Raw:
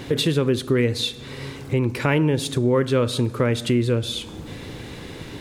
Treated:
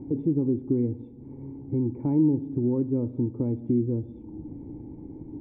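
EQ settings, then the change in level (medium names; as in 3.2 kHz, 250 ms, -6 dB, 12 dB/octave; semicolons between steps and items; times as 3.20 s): cascade formant filter u; distance through air 150 m; bass shelf 200 Hz +10 dB; 0.0 dB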